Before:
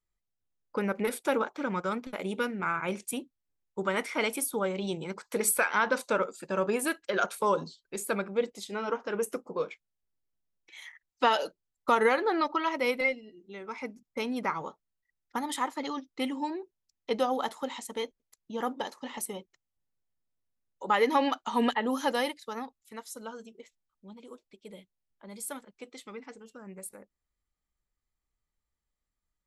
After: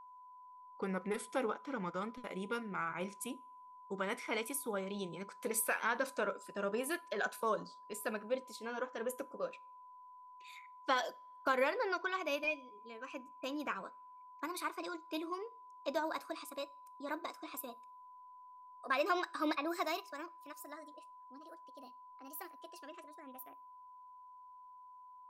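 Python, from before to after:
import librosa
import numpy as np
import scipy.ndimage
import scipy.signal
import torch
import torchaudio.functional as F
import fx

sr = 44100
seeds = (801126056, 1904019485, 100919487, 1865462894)

y = fx.speed_glide(x, sr, from_pct=93, to_pct=140)
y = y + 10.0 ** (-43.0 / 20.0) * np.sin(2.0 * np.pi * 1000.0 * np.arange(len(y)) / sr)
y = fx.rev_double_slope(y, sr, seeds[0], early_s=0.38, late_s=1.7, knee_db=-27, drr_db=18.0)
y = y * 10.0 ** (-8.5 / 20.0)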